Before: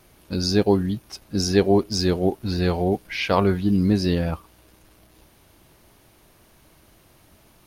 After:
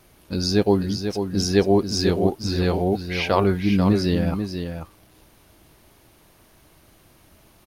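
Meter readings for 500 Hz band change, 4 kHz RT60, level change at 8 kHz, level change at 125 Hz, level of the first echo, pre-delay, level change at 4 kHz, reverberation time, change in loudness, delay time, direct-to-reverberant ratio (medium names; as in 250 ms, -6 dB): +0.5 dB, no reverb, +0.5 dB, +0.5 dB, -7.5 dB, no reverb, +0.5 dB, no reverb, +0.5 dB, 490 ms, no reverb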